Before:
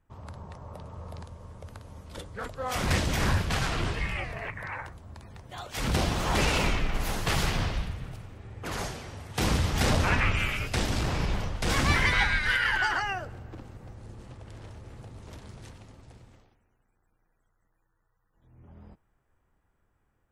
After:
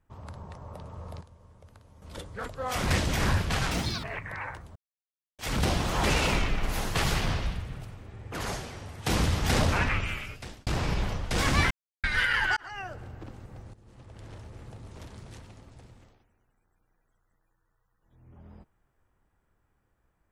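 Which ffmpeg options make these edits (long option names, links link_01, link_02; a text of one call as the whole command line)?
ffmpeg -i in.wav -filter_complex "[0:a]asplit=12[link_01][link_02][link_03][link_04][link_05][link_06][link_07][link_08][link_09][link_10][link_11][link_12];[link_01]atrim=end=1.212[link_13];[link_02]atrim=start=1.208:end=2.022,asetpts=PTS-STARTPTS,volume=-9.5dB[link_14];[link_03]atrim=start=2.018:end=3.714[link_15];[link_04]atrim=start=3.71:end=4.35,asetpts=PTS-STARTPTS,asetrate=86436,aresample=44100[link_16];[link_05]atrim=start=4.346:end=5.07,asetpts=PTS-STARTPTS,afade=type=out:start_time=0.72:duration=0.004:curve=hsin[link_17];[link_06]atrim=start=5.07:end=5.7,asetpts=PTS-STARTPTS,volume=0[link_18];[link_07]atrim=start=5.7:end=10.98,asetpts=PTS-STARTPTS,afade=type=in:duration=0.004:curve=hsin,afade=type=out:start_time=4.27:duration=1.01[link_19];[link_08]atrim=start=10.98:end=12.02,asetpts=PTS-STARTPTS,afade=type=in:duration=0.004:curve=hsin,afade=type=out:start_time=1.036:duration=0.004:curve=hsin[link_20];[link_09]atrim=start=12.02:end=12.35,asetpts=PTS-STARTPTS,volume=0[link_21];[link_10]atrim=start=12.35:end=12.88,asetpts=PTS-STARTPTS,afade=type=in:duration=0.004:curve=hsin,afade=type=out:start_time=0.526:duration=0.004:curve=hsin[link_22];[link_11]atrim=start=12.88:end=14.05,asetpts=PTS-STARTPTS,afade=type=in:duration=0.48,afade=type=out:start_time=1.166:duration=0.004:curve=hsin:silence=0.141254[link_23];[link_12]atrim=start=14.05,asetpts=PTS-STARTPTS,afade=type=in:duration=0.56:silence=0.141254[link_24];[link_13][link_14]acrossfade=duration=0.004:curve1=hsin:curve2=hsin[link_25];[link_25][link_15]acrossfade=duration=0.004:curve1=hsin:curve2=hsin[link_26];[link_26][link_16]acrossfade=duration=0.004:curve1=hsin:curve2=hsin[link_27];[link_17][link_18][link_19][link_20][link_21][link_22][link_23][link_24]concat=n=8:v=0:a=1[link_28];[link_27][link_28]acrossfade=duration=0.004:curve1=hsin:curve2=hsin" out.wav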